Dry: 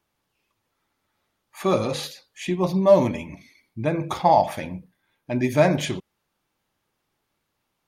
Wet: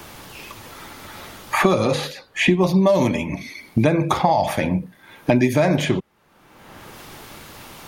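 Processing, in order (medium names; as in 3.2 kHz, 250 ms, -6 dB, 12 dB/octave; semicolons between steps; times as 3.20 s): peak limiter -13 dBFS, peak gain reduction 8.5 dB; three bands compressed up and down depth 100%; trim +6 dB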